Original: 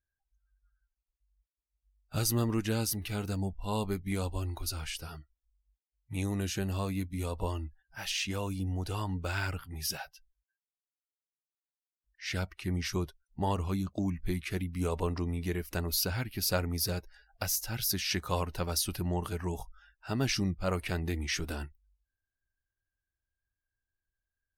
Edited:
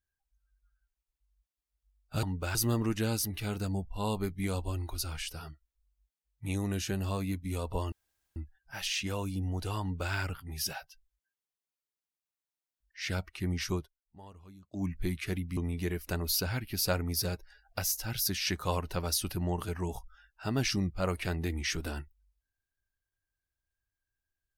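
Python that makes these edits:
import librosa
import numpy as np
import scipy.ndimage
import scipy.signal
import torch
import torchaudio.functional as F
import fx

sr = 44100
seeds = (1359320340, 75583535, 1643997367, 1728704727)

y = fx.edit(x, sr, fx.insert_room_tone(at_s=7.6, length_s=0.44),
    fx.duplicate(start_s=9.05, length_s=0.32, to_s=2.23),
    fx.fade_down_up(start_s=12.99, length_s=1.1, db=-20.5, fade_s=0.14),
    fx.cut(start_s=14.81, length_s=0.4), tone=tone)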